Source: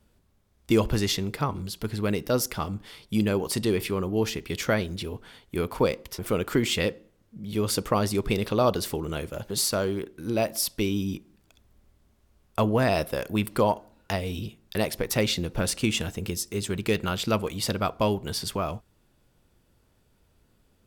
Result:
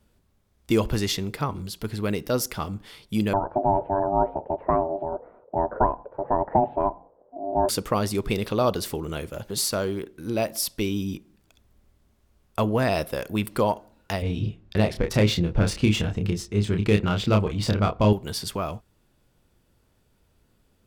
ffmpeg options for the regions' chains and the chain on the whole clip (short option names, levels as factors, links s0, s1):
-filter_complex "[0:a]asettb=1/sr,asplit=3[s0][s1][s2];[s0]atrim=end=3.334[s3];[s1]atrim=start=3.33:end=7.69,asetpts=PTS-STARTPTS,afade=t=in:d=0.004:c=qsin,afade=t=out:st=4.356:d=0.004:c=qsin,lowpass=f=1000:w=0.5412,lowpass=f=1000:w=1.3066,aeval=exprs='val(0)*sin(2*PI*490*n/s)':c=same,equalizer=f=570:t=o:w=1.3:g=12[s4];[s2]atrim=start=7.686[s5];[s3][s4]acrossfade=d=0.004:c1=hsin:c2=qsin[s6];[s6][s5]acrossfade=d=0.004:c1=qsin:c2=hsin,asettb=1/sr,asplit=3[s7][s8][s9];[s7]atrim=end=14.224[s10];[s8]atrim=start=14.22:end=18.13,asetpts=PTS-STARTPTS,afade=t=in:d=0.004:c=qsin,afade=t=out:st=3.906:d=0.004:c=qsin,lowshelf=f=210:g=9.5,adynamicsmooth=sensitivity=2.5:basefreq=3900,asplit=2[s11][s12];[s12]adelay=29,volume=0.596[s13];[s11][s13]amix=inputs=2:normalize=0,atrim=end_sample=172431[s14];[s9]atrim=start=18.126[s15];[s10][s14]acrossfade=d=0.004:c1=hsin:c2=qsin[s16];[s16][s15]acrossfade=d=0.004:c1=qsin:c2=hsin"